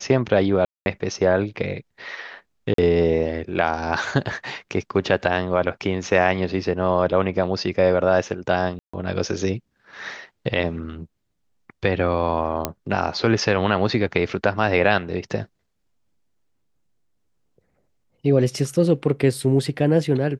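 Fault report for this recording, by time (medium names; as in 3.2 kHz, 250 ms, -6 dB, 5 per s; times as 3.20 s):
0.65–0.86 s: dropout 211 ms
2.74–2.78 s: dropout 43 ms
8.79–8.94 s: dropout 145 ms
12.65 s: pop -6 dBFS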